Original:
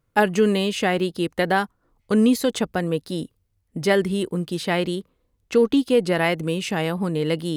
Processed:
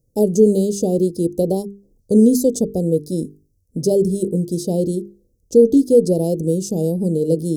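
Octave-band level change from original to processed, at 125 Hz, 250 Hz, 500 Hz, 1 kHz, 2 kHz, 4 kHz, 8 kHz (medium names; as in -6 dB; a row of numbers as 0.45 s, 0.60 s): +5.5 dB, +5.0 dB, +5.5 dB, -11.5 dB, under -40 dB, -10.0 dB, +6.5 dB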